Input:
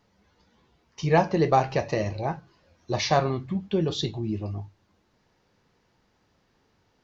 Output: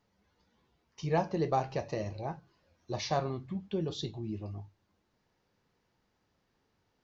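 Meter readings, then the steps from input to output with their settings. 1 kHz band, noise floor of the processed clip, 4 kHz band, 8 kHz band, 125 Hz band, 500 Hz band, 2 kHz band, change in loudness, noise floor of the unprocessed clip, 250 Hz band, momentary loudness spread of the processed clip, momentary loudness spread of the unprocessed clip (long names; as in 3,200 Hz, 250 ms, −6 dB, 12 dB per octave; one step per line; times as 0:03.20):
−9.0 dB, −77 dBFS, −9.5 dB, can't be measured, −8.5 dB, −9.0 dB, −12.0 dB, −9.0 dB, −69 dBFS, −8.5 dB, 11 LU, 12 LU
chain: dynamic equaliser 2,000 Hz, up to −4 dB, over −43 dBFS, Q 1.1
level −8.5 dB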